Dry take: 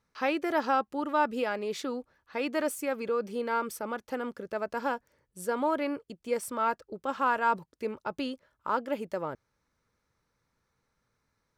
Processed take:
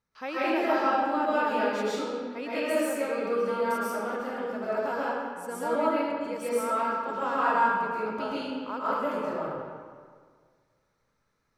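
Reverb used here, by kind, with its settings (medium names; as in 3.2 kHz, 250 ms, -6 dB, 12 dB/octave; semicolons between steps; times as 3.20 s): algorithmic reverb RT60 1.8 s, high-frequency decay 0.7×, pre-delay 90 ms, DRR -10 dB; trim -7.5 dB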